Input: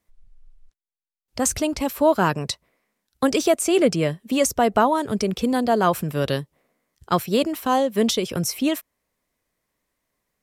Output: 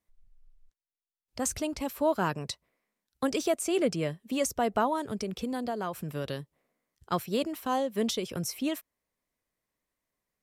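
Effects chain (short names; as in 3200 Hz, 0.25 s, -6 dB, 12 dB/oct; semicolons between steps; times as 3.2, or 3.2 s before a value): 5.11–6.4 compressor, threshold -20 dBFS, peak gain reduction 7.5 dB; gain -9 dB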